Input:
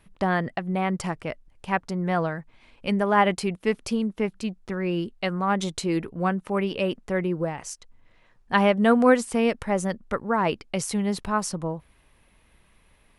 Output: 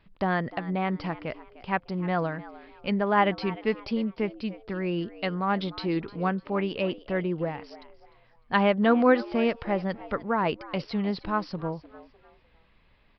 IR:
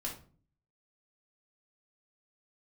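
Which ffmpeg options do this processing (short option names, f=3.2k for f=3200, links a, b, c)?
-filter_complex "[0:a]asplit=2[a][b];[b]asplit=3[c][d][e];[c]adelay=302,afreqshift=110,volume=-17.5dB[f];[d]adelay=604,afreqshift=220,volume=-27.7dB[g];[e]adelay=906,afreqshift=330,volume=-37.8dB[h];[f][g][h]amix=inputs=3:normalize=0[i];[a][i]amix=inputs=2:normalize=0,aresample=11025,aresample=44100,volume=-2.5dB"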